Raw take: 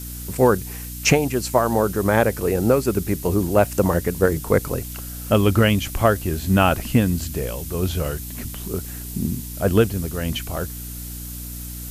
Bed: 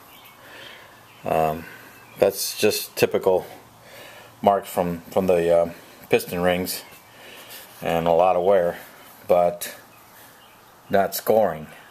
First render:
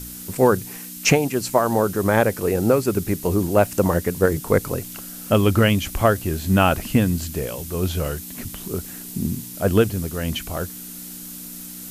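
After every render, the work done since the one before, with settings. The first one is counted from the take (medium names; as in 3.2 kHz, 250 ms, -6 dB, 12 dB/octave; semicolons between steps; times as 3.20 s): de-hum 60 Hz, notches 2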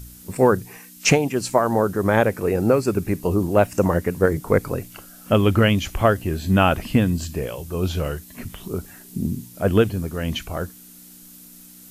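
noise print and reduce 9 dB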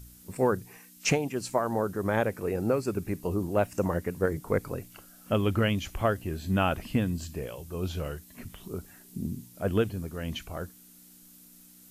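trim -9 dB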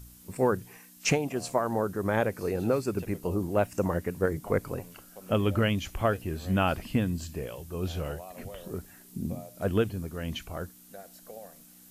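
add bed -27.5 dB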